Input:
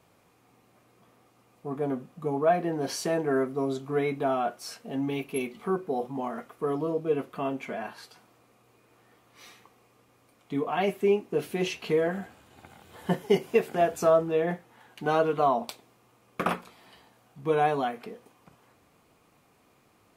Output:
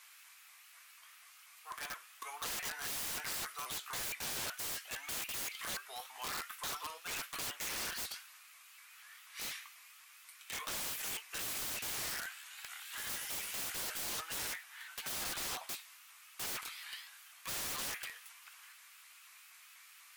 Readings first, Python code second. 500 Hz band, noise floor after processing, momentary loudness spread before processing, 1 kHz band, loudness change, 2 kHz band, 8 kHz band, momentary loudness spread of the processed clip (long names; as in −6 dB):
−28.0 dB, −59 dBFS, 12 LU, −16.0 dB, −11.0 dB, −4.5 dB, +6.5 dB, 19 LU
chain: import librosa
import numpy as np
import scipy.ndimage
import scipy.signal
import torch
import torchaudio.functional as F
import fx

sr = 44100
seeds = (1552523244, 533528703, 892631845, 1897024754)

y = scipy.signal.sosfilt(scipy.signal.butter(4, 1500.0, 'highpass', fs=sr, output='sos'), x)
y = fx.high_shelf(y, sr, hz=7500.0, db=5.0)
y = 10.0 ** (-32.0 / 20.0) * np.tanh(y / 10.0 ** (-32.0 / 20.0))
y = fx.room_early_taps(y, sr, ms=(10, 22), db=(-18.0, -13.0))
y = (np.mod(10.0 ** (44.5 / 20.0) * y + 1.0, 2.0) - 1.0) / 10.0 ** (44.5 / 20.0)
y = fx.vibrato_shape(y, sr, shape='saw_up', rate_hz=4.1, depth_cents=160.0)
y = y * librosa.db_to_amplitude(10.0)